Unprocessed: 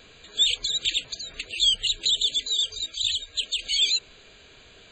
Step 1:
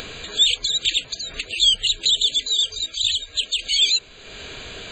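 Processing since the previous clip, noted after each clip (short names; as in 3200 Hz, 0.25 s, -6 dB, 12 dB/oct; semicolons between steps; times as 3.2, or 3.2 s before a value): upward compressor, threshold -29 dBFS; gain +4.5 dB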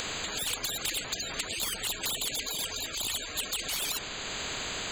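in parallel at -2.5 dB: limiter -16.5 dBFS, peak gain reduction 10.5 dB; on the sum: soft clip -9 dBFS, distortion -19 dB; spectral compressor 4:1; gain -8.5 dB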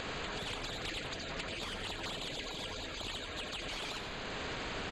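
tape spacing loss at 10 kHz 24 dB; feedback echo 87 ms, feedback 54%, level -7.5 dB; Doppler distortion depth 0.25 ms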